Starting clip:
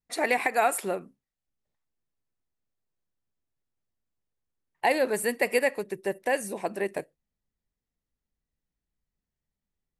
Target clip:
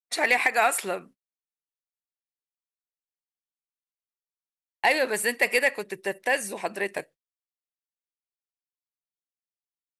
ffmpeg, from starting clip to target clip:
ffmpeg -i in.wav -filter_complex "[0:a]lowpass=frequency=3700:poles=1,agate=range=-37dB:threshold=-48dB:ratio=16:detection=peak,tiltshelf=frequency=1100:gain=-7.5,asplit=2[link_01][link_02];[link_02]asoftclip=type=tanh:threshold=-20dB,volume=-4dB[link_03];[link_01][link_03]amix=inputs=2:normalize=0" out.wav

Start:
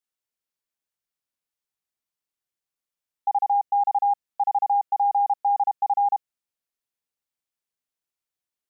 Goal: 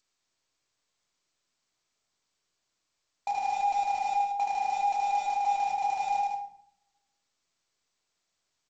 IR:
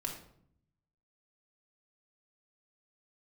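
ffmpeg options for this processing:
-filter_complex "[0:a]equalizer=frequency=700:width=0.53:gain=4.5,bandreject=frequency=50:width_type=h:width=6,bandreject=frequency=100:width_type=h:width=6,bandreject=frequency=150:width_type=h:width=6,acompressor=threshold=-22dB:ratio=16,aresample=16000,acrusher=bits=4:mode=log:mix=0:aa=0.000001,aresample=44100,asoftclip=type=tanh:threshold=-19.5dB,aecho=1:1:107.9|180.8:0.562|0.398[link_01];[1:a]atrim=start_sample=2205[link_02];[link_01][link_02]afir=irnorm=-1:irlink=0" -ar 16000 -c:a g722

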